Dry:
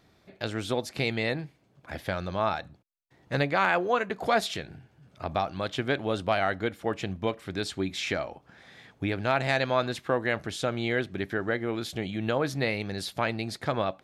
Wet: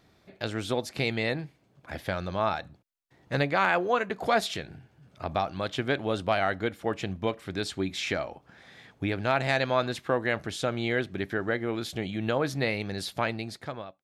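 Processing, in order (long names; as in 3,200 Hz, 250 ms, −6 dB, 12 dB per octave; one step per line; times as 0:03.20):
fade-out on the ending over 0.83 s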